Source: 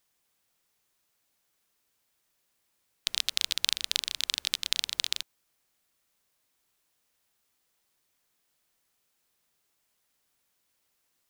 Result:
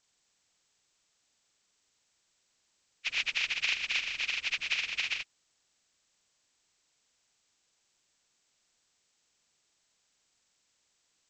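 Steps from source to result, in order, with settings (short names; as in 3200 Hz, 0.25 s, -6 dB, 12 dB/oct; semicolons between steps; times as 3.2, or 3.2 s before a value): nonlinear frequency compression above 1100 Hz 1.5:1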